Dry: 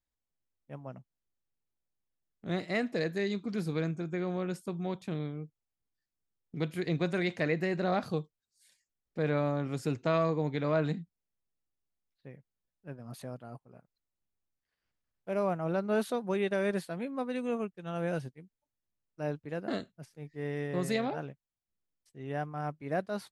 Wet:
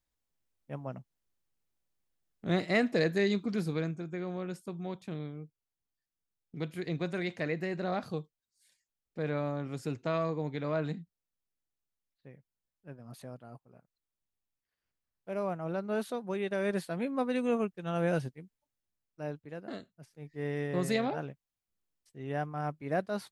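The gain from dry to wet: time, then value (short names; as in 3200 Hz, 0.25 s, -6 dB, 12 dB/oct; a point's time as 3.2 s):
3.34 s +4 dB
4.05 s -3.5 dB
16.43 s -3.5 dB
17.06 s +3.5 dB
18.34 s +3.5 dB
19.82 s -8 dB
20.41 s +1 dB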